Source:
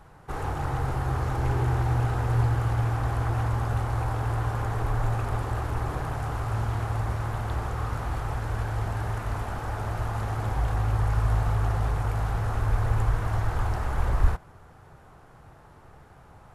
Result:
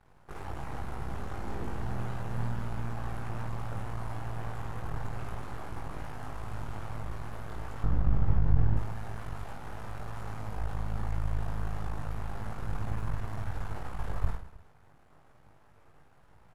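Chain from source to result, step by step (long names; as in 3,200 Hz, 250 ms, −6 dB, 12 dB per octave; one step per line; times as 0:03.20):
0:07.83–0:08.77: RIAA equalisation playback
half-wave rectification
reverse bouncing-ball delay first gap 20 ms, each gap 1.6×, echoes 5
level −8.5 dB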